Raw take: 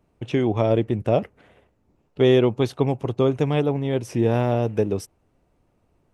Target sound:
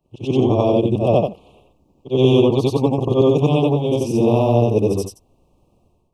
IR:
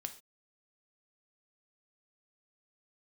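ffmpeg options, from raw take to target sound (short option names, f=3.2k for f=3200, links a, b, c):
-af "afftfilt=real='re':imag='-im':win_size=8192:overlap=0.75,asuperstop=centerf=1700:order=12:qfactor=1.3,dynaudnorm=f=140:g=5:m=10.5dB,volume=1dB"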